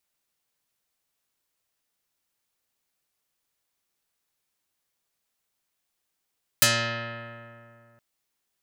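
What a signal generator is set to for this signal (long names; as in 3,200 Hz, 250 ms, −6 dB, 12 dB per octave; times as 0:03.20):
Karplus-Strong string A#2, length 1.37 s, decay 2.54 s, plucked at 0.3, dark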